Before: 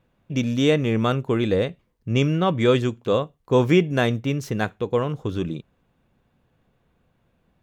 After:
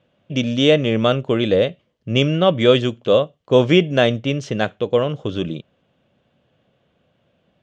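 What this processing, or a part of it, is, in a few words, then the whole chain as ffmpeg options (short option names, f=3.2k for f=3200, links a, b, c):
car door speaker: -af "highpass=100,equalizer=f=590:t=q:w=4:g=9,equalizer=f=950:t=q:w=4:g=-4,equalizer=f=3.1k:t=q:w=4:g=10,lowpass=f=7k:w=0.5412,lowpass=f=7k:w=1.3066,volume=2.5dB"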